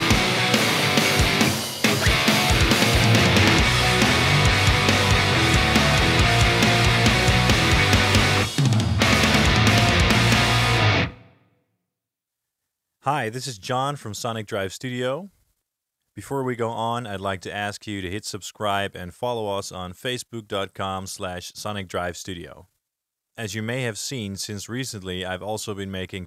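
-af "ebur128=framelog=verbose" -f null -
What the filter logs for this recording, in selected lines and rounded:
Integrated loudness:
  I:         -20.0 LUFS
  Threshold: -30.6 LUFS
Loudness range:
  LRA:        13.2 LU
  Threshold: -40.9 LUFS
  LRA low:   -30.4 LUFS
  LRA high:  -17.1 LUFS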